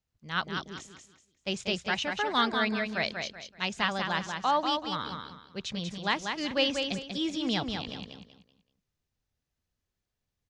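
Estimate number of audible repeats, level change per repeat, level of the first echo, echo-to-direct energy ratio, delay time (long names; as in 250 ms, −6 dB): 3, −10.5 dB, −5.5 dB, −5.0 dB, 190 ms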